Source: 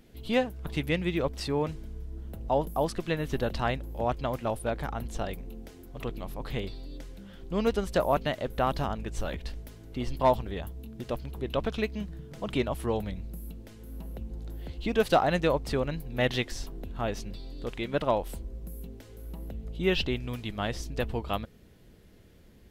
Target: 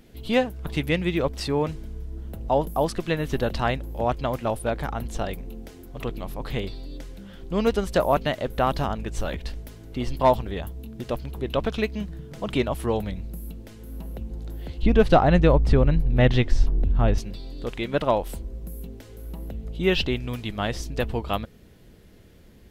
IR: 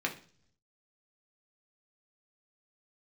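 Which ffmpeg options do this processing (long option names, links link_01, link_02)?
-filter_complex "[0:a]asettb=1/sr,asplit=3[link_01][link_02][link_03];[link_01]atrim=end=14.824[link_04];[link_02]atrim=start=14.82:end=17.18,asetpts=PTS-STARTPTS,afade=type=in:duration=0.004:curve=qsin,afade=type=out:start_time=2.356:duration=0.004:curve=qsin,aemphasis=mode=reproduction:type=bsi[link_05];[link_03]atrim=start=17.176[link_06];[link_04][link_05]acrossfade=duration=0.004:curve1=hsin:curve2=qsin[link_07];[link_07][link_06]acrossfade=duration=0.004:curve1=qsin:curve2=hsin,volume=4.5dB"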